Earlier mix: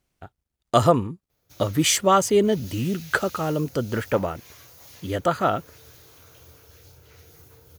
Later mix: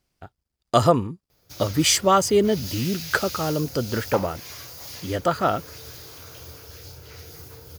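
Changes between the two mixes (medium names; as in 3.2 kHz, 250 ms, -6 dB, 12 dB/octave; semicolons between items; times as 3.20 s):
background +8.0 dB; master: add peaking EQ 4.9 kHz +8 dB 0.25 oct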